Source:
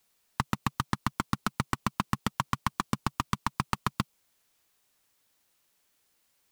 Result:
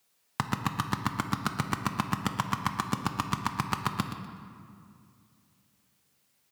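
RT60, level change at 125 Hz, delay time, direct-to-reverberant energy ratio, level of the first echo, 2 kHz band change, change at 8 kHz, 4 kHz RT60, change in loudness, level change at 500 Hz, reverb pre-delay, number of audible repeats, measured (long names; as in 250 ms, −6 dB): 2.3 s, +1.0 dB, 123 ms, 4.5 dB, −11.0 dB, +1.0 dB, +1.0 dB, 1.4 s, +1.0 dB, +1.5 dB, 5 ms, 2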